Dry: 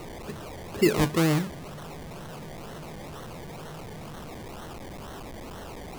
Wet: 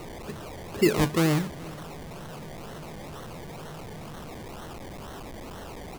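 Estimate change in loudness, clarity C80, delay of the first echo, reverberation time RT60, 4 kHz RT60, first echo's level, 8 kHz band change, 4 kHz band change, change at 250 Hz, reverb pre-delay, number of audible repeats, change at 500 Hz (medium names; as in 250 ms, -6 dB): 0.0 dB, no reverb, 426 ms, no reverb, no reverb, -22.0 dB, 0.0 dB, 0.0 dB, 0.0 dB, no reverb, 1, 0.0 dB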